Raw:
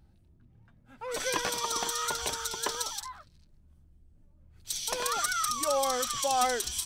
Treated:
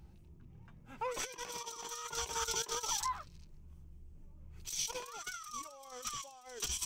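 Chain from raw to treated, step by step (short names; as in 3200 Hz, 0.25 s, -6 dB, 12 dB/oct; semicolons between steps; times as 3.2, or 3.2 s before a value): ripple EQ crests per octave 0.75, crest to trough 6 dB; negative-ratio compressor -37 dBFS, ratio -0.5; gain -3 dB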